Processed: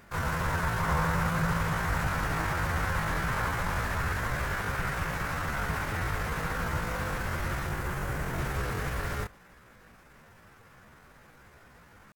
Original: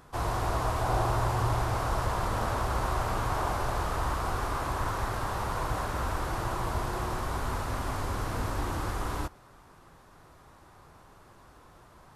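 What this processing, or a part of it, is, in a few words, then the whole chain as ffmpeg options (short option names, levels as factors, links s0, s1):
chipmunk voice: -filter_complex "[0:a]asettb=1/sr,asplit=3[s0][s1][s2];[s0]atrim=end=7.704[s3];[s1]atrim=start=7.7:end=8.38,asetpts=PTS-STARTPTS,afade=t=in:d=0.004:c=qsin,afade=t=out:st=0.676:d=0.004:c=qsin,equalizer=f=2800:t=o:w=1.5:g=-4.5[s4];[s2]atrim=start=8.376[s5];[s3][s4]acrossfade=d=0.004:c1=hsin:c2=qsin[s6];[s6][s5]acrossfade=d=0.004:c1=qsin:c2=hsin,asetrate=62367,aresample=44100,atempo=0.707107"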